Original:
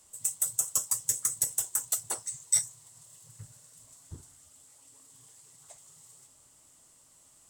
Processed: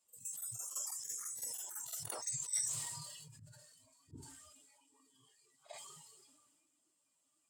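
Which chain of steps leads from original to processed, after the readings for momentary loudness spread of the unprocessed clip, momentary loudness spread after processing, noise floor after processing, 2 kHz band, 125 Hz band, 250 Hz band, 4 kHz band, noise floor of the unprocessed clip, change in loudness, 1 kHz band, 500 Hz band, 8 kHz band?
7 LU, 22 LU, -80 dBFS, -6.5 dB, -5.0 dB, -3.0 dB, -6.0 dB, -61 dBFS, -11.5 dB, -5.5 dB, -3.5 dB, -10.5 dB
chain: per-bin expansion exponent 1.5; auto swell 0.126 s; HPF 94 Hz; low shelf 280 Hz -9 dB; compressor 2:1, threshold -58 dBFS, peak gain reduction 14 dB; spectral noise reduction 14 dB; pre-echo 47 ms -15.5 dB; sustainer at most 31 dB/s; gain +13 dB

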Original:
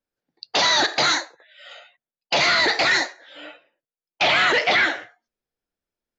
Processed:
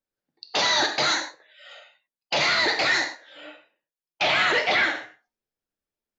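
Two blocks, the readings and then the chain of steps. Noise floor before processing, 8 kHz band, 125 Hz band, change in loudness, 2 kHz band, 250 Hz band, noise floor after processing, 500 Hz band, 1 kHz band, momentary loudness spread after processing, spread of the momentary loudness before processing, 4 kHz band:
under -85 dBFS, n/a, -2.5 dB, -3.0 dB, -3.0 dB, -3.0 dB, under -85 dBFS, -3.0 dB, -3.5 dB, 10 LU, 8 LU, -3.0 dB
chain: non-linear reverb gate 0.13 s flat, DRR 6.5 dB; gain -4 dB

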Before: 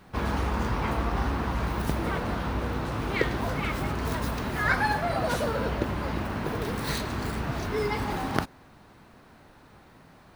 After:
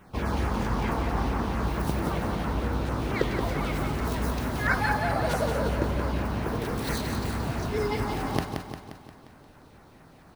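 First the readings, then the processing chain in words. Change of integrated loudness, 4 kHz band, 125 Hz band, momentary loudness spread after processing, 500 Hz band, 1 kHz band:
+0.5 dB, -1.0 dB, +1.5 dB, 4 LU, +1.0 dB, -0.5 dB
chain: LFO notch saw down 4.5 Hz 910–4700 Hz; feedback echo 0.176 s, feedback 54%, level -6 dB

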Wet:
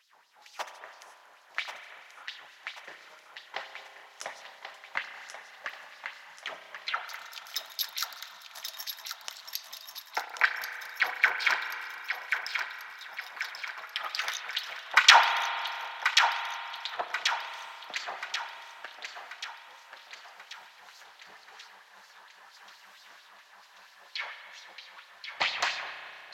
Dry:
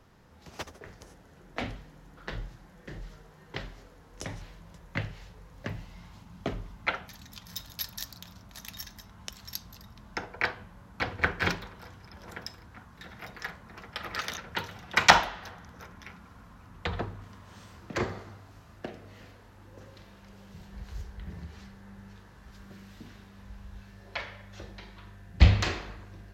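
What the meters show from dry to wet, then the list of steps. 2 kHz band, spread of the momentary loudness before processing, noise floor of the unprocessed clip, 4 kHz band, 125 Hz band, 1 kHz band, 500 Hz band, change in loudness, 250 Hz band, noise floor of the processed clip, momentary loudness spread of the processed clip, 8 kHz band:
+4.0 dB, 21 LU, -54 dBFS, +6.0 dB, under -35 dB, +2.5 dB, -5.5 dB, +1.5 dB, under -20 dB, -56 dBFS, 21 LU, +3.0 dB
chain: LFO high-pass sine 4.4 Hz 730–4500 Hz; thinning echo 1.085 s, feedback 52%, high-pass 510 Hz, level -6 dB; spring tank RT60 2.8 s, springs 32 ms, chirp 60 ms, DRR 7 dB

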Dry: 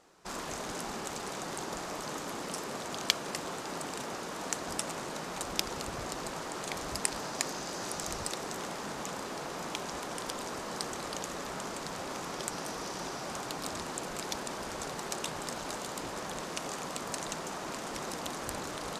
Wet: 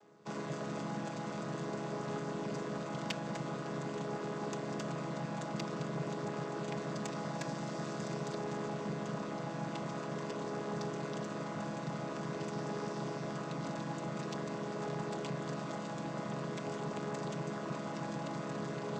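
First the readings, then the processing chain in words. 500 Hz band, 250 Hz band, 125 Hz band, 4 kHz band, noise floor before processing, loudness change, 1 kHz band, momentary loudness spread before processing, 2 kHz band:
+0.5 dB, +3.5 dB, +7.0 dB, -11.0 dB, -40 dBFS, -2.5 dB, -3.5 dB, 4 LU, -5.5 dB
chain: chord vocoder minor triad, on C#3; in parallel at -4 dB: soft clip -36 dBFS, distortion -14 dB; on the sum: gain -3 dB

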